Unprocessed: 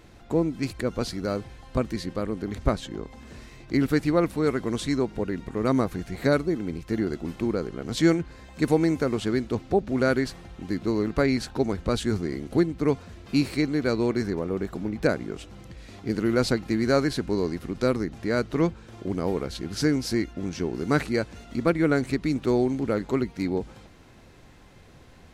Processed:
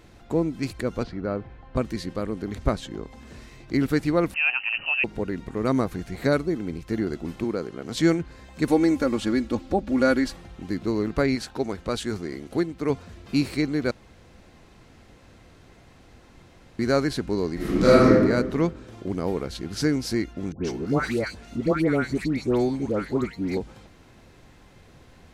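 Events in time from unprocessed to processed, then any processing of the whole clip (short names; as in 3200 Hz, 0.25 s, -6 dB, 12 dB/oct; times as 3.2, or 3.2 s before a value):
1.03–1.76 LPF 2000 Hz
4.34–5.04 inverted band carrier 2900 Hz
7.44–7.96 HPF 170 Hz 6 dB/oct
8.68–10.37 comb 3.6 ms, depth 67%
11.35–12.9 low shelf 250 Hz -7.5 dB
13.91–16.79 room tone
17.55–18.09 reverb throw, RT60 1.3 s, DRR -11 dB
20.52–23.57 dispersion highs, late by 0.126 s, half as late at 1300 Hz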